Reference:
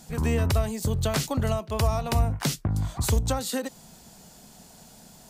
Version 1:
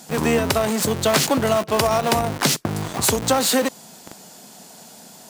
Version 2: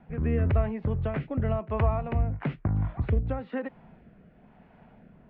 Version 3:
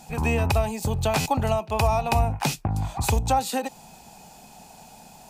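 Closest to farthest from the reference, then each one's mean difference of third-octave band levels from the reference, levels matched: 3, 1, 2; 2.5, 4.5, 9.5 decibels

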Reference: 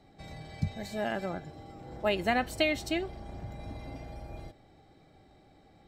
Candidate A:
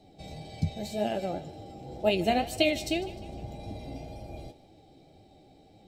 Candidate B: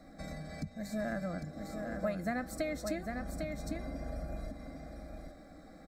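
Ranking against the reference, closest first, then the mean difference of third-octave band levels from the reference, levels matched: A, B; 3.0, 7.0 decibels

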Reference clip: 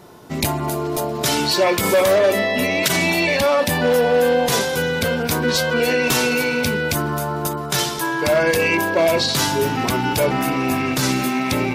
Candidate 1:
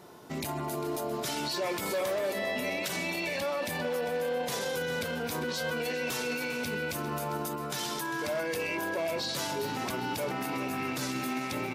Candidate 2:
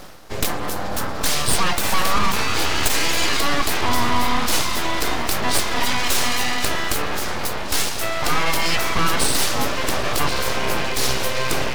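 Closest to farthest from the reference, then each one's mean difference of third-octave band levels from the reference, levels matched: 1, 2; 3.0, 7.5 decibels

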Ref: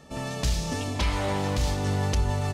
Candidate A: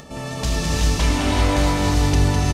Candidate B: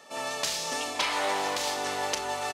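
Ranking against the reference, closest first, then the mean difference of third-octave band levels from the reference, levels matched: A, B; 3.5, 8.0 decibels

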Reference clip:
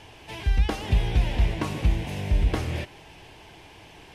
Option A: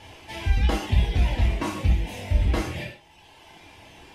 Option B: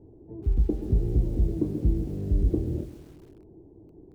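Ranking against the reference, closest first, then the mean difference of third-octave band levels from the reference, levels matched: A, B; 3.0, 12.5 decibels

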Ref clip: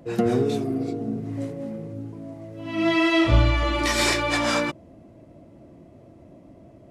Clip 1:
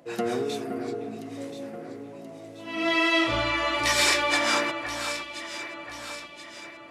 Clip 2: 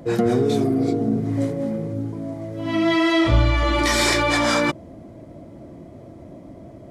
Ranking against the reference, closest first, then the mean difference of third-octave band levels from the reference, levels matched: 2, 1; 2.5, 9.0 decibels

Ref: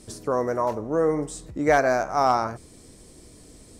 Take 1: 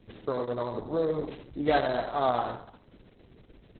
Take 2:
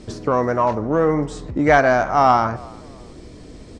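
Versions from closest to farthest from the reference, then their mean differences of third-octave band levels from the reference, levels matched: 2, 1; 4.5, 7.0 decibels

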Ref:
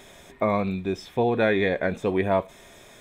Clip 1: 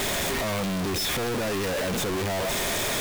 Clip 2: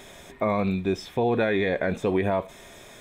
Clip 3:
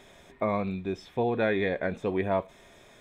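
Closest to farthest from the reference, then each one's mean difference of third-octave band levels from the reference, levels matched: 3, 2, 1; 1.0, 2.0, 17.5 decibels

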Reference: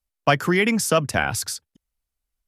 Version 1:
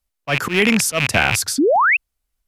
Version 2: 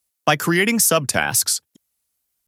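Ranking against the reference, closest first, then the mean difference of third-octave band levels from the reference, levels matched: 2, 1; 3.5, 7.0 decibels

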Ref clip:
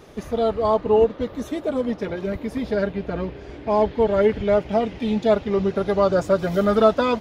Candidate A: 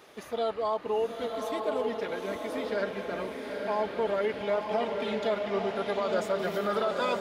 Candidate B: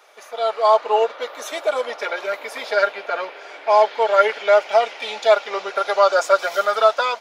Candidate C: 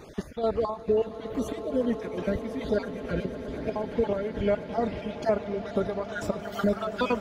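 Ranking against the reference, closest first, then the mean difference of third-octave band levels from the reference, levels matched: C, A, B; 5.0, 7.5, 11.0 decibels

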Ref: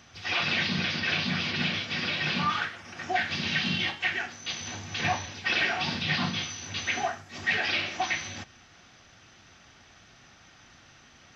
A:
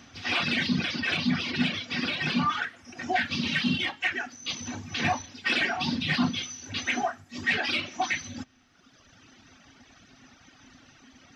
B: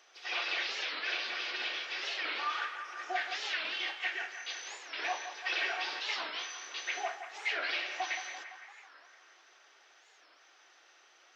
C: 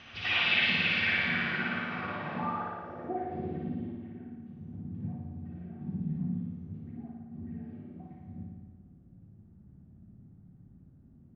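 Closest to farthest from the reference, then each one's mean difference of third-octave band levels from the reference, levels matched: A, B, C; 4.0, 8.0, 13.0 decibels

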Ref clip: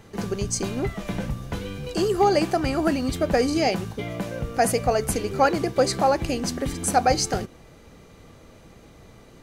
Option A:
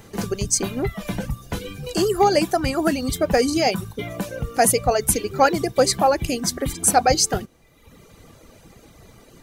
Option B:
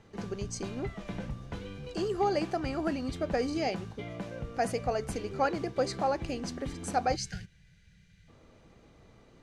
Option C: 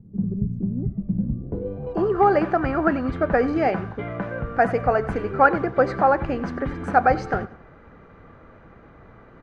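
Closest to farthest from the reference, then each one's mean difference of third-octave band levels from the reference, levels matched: B, A, C; 2.5, 4.0, 9.0 decibels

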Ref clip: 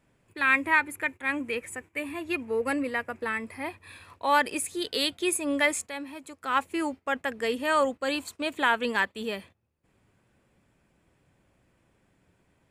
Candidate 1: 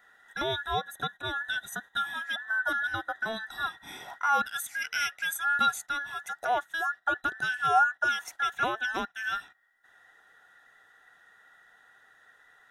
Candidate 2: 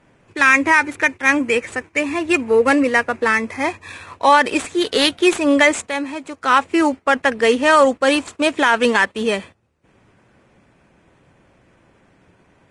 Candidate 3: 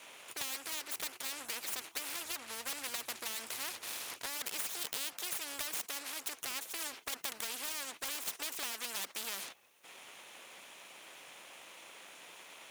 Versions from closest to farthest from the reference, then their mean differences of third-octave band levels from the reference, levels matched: 2, 1, 3; 3.5, 10.5, 15.0 decibels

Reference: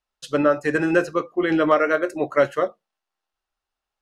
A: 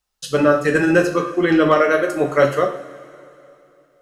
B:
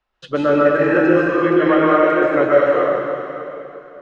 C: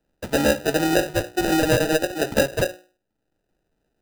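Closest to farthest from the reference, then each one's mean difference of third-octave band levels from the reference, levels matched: A, B, C; 5.0, 7.5, 13.0 decibels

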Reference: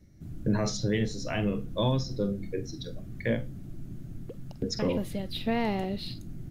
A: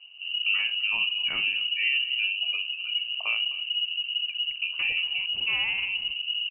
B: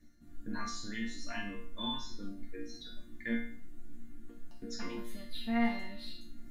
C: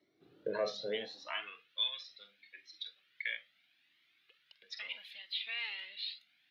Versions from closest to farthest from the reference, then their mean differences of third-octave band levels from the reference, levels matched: B, C, A; 6.5, 15.0, 20.0 decibels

